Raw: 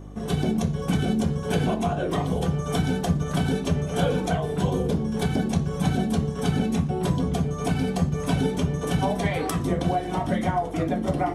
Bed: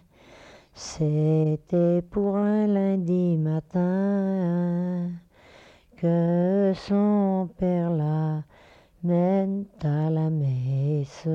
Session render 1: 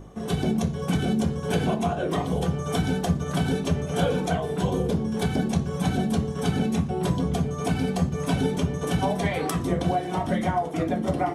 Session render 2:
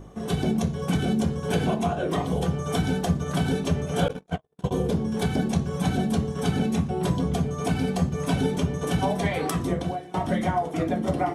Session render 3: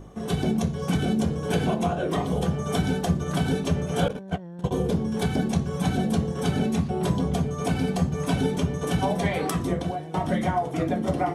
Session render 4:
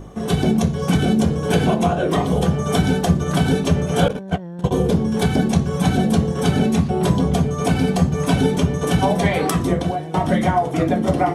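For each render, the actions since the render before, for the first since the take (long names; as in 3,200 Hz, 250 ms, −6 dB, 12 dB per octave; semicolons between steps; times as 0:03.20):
hum removal 50 Hz, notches 6
0:04.08–0:04.71: noise gate −23 dBFS, range −55 dB; 0:09.65–0:10.14: fade out, to −17.5 dB
mix in bed −15.5 dB
level +7 dB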